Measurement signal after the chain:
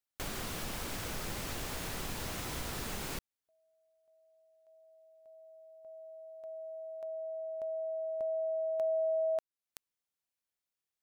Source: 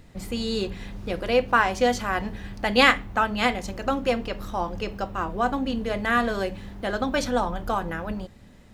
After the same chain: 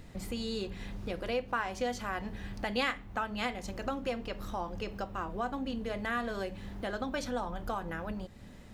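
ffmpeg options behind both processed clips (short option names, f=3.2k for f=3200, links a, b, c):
-af "acompressor=threshold=-40dB:ratio=2"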